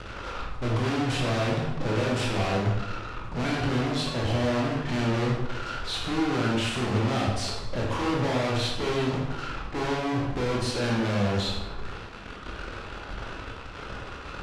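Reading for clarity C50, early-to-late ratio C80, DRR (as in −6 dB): 1.5 dB, 4.5 dB, −3.0 dB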